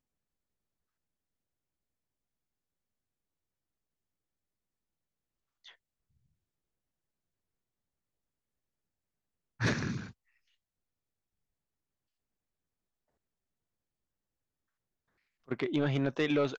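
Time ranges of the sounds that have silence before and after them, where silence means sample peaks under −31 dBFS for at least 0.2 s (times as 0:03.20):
0:09.61–0:09.97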